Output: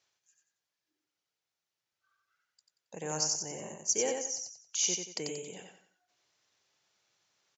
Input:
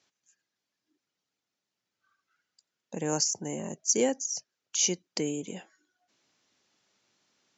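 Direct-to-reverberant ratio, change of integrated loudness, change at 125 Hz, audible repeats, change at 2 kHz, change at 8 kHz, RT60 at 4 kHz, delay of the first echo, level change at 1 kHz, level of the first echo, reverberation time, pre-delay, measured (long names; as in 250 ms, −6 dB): no reverb audible, −3.0 dB, −7.0 dB, 4, −2.5 dB, can't be measured, no reverb audible, 91 ms, −3.0 dB, −4.0 dB, no reverb audible, no reverb audible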